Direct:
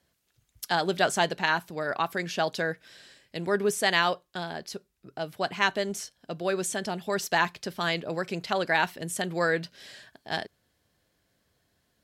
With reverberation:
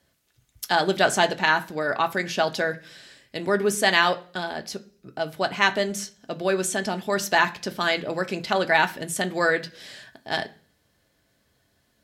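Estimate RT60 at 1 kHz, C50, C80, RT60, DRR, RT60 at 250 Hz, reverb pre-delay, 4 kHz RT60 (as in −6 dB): 0.40 s, 18.0 dB, 23.0 dB, 0.45 s, 7.0 dB, 0.60 s, 3 ms, 0.50 s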